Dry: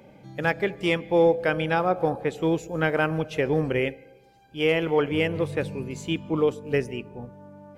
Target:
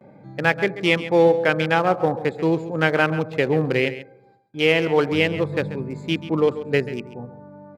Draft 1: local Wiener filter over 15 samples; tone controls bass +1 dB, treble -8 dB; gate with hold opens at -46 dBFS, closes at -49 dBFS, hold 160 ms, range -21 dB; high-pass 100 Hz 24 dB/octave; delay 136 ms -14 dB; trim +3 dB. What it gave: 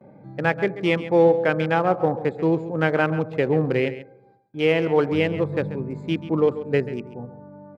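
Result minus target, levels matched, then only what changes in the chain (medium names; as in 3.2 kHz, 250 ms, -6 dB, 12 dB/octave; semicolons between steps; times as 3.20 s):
4 kHz band -6.0 dB
add after high-pass: treble shelf 2.2 kHz +11 dB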